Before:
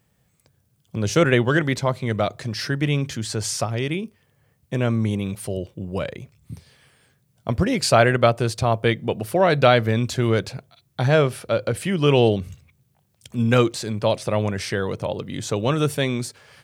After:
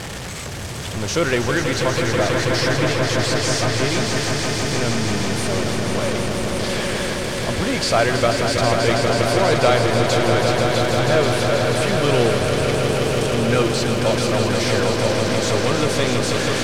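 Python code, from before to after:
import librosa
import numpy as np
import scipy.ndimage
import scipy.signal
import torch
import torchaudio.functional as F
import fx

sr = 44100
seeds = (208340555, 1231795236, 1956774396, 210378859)

p1 = x + 0.5 * 10.0 ** (-17.0 / 20.0) * np.sign(x)
p2 = scipy.signal.sosfilt(scipy.signal.butter(2, 7000.0, 'lowpass', fs=sr, output='sos'), p1)
p3 = fx.peak_eq(p2, sr, hz=140.0, db=-6.0, octaves=1.6)
p4 = p3 + fx.echo_swell(p3, sr, ms=162, loudest=5, wet_db=-7.0, dry=0)
y = p4 * 10.0 ** (-3.5 / 20.0)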